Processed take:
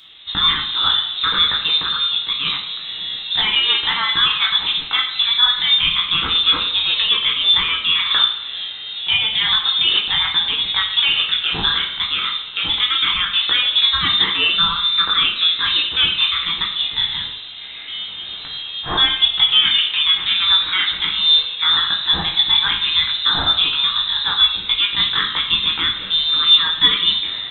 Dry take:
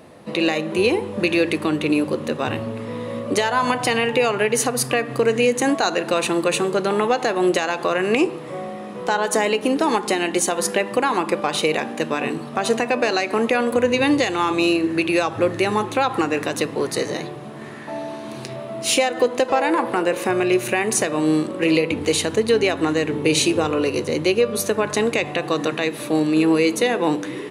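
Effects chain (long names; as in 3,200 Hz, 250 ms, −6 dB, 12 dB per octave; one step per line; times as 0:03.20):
chorus effect 0.97 Hz, delay 16.5 ms, depth 4.2 ms
voice inversion scrambler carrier 3,900 Hz
coupled-rooms reverb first 0.57 s, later 3.2 s, from −22 dB, DRR 1 dB
level +3 dB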